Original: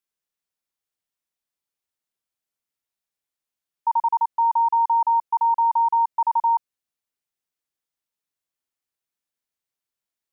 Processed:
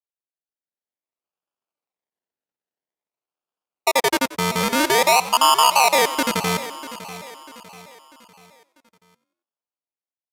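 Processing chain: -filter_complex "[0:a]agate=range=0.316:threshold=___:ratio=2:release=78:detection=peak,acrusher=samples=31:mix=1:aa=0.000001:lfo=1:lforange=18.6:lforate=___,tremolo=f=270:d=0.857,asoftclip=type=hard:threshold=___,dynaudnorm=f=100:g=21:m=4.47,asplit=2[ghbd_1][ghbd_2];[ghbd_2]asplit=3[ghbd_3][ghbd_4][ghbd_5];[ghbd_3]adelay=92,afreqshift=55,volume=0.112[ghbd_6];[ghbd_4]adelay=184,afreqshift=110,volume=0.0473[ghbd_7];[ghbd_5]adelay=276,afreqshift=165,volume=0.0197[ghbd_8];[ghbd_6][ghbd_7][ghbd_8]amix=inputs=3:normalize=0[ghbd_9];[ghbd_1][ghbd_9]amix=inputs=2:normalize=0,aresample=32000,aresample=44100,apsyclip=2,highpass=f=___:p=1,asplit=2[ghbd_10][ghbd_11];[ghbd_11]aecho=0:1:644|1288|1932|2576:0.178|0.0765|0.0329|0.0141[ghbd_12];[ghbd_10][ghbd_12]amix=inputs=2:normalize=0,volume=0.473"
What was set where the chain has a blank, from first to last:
0.0398, 0.5, 0.141, 870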